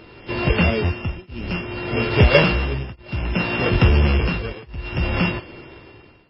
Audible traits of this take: a buzz of ramps at a fixed pitch in blocks of 16 samples; tremolo triangle 0.59 Hz, depth 100%; MP3

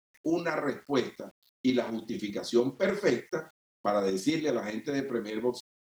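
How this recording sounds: tremolo saw up 10 Hz, depth 50%; a quantiser's noise floor 10-bit, dither none

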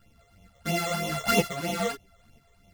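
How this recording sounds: a buzz of ramps at a fixed pitch in blocks of 64 samples; phasing stages 12, 3.1 Hz, lowest notch 250–1600 Hz; tremolo saw up 2.1 Hz, depth 30%; a shimmering, thickened sound

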